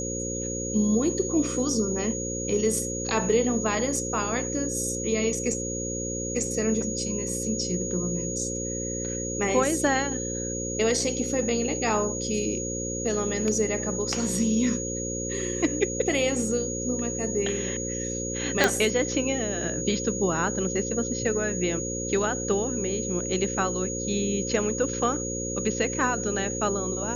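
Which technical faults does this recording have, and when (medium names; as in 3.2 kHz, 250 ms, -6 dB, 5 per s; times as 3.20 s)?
buzz 60 Hz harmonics 9 -33 dBFS
whine 6.7 kHz -32 dBFS
18.64 s: pop -4 dBFS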